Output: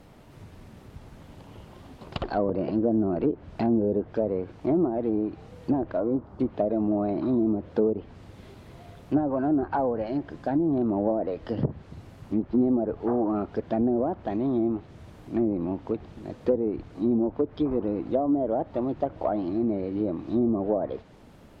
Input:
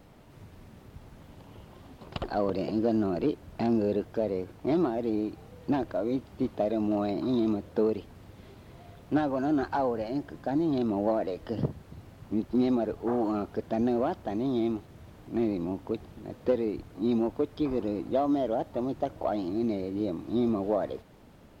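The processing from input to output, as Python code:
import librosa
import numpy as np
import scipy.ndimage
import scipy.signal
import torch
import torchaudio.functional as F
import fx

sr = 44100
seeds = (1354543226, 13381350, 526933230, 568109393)

y = fx.env_lowpass_down(x, sr, base_hz=660.0, full_db=-22.5)
y = fx.high_shelf_res(y, sr, hz=1700.0, db=-11.5, q=1.5, at=(6.0, 6.4))
y = y * librosa.db_to_amplitude(3.0)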